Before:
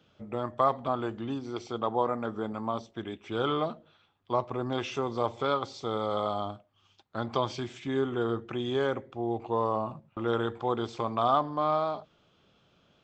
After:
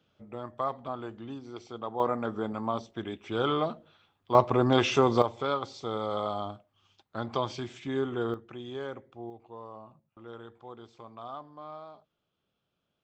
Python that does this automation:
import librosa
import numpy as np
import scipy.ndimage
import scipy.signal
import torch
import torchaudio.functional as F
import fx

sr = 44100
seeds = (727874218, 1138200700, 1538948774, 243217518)

y = fx.gain(x, sr, db=fx.steps((0.0, -6.5), (2.0, 1.0), (4.35, 8.5), (5.22, -1.5), (8.34, -9.0), (9.3, -16.5)))